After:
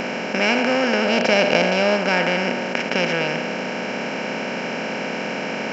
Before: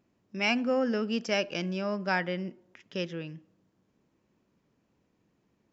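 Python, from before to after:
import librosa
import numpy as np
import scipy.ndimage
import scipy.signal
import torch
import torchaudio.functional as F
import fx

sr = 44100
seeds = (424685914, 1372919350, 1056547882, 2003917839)

y = fx.bin_compress(x, sr, power=0.2)
y = fx.graphic_eq_15(y, sr, hz=(100, 630, 4000), db=(9, 5, 4), at=(1.05, 1.97))
y = y * 10.0 ** (3.0 / 20.0)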